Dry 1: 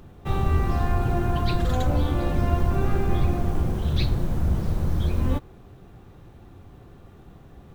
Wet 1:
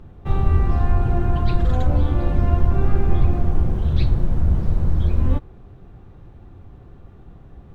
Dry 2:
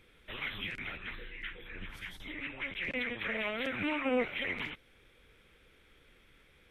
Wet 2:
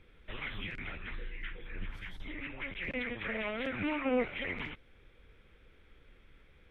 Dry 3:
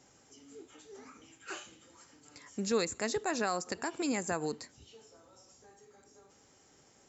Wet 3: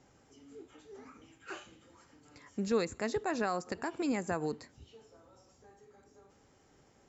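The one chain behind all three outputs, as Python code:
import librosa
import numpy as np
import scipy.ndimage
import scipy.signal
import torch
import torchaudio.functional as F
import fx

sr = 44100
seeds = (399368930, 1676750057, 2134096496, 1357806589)

y = fx.lowpass(x, sr, hz=2400.0, slope=6)
y = fx.low_shelf(y, sr, hz=86.0, db=8.5)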